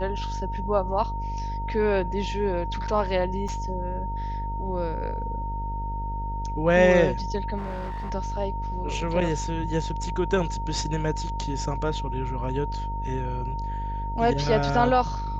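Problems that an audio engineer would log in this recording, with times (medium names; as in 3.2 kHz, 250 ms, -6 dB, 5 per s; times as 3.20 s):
buzz 50 Hz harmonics 14 -31 dBFS
whine 920 Hz -32 dBFS
3.48 s: dropout 5 ms
7.57–8.11 s: clipped -28.5 dBFS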